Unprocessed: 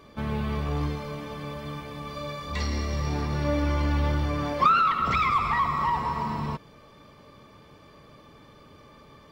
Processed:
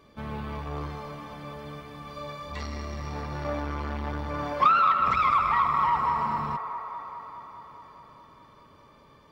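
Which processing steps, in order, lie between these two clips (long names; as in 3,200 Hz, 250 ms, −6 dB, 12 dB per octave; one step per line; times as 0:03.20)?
dynamic equaliser 990 Hz, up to +7 dB, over −39 dBFS, Q 0.73
on a send: delay with a band-pass on its return 208 ms, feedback 74%, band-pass 960 Hz, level −8 dB
on the sum: saturating transformer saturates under 870 Hz
level −5.5 dB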